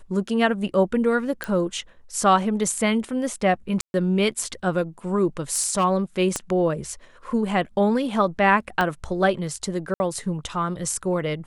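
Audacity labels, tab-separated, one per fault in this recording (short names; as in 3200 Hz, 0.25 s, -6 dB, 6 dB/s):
1.440000	1.440000	pop -12 dBFS
3.810000	3.940000	gap 0.131 s
5.520000	5.850000	clipped -16 dBFS
6.360000	6.360000	pop -10 dBFS
8.810000	8.810000	pop -10 dBFS
9.940000	10.000000	gap 60 ms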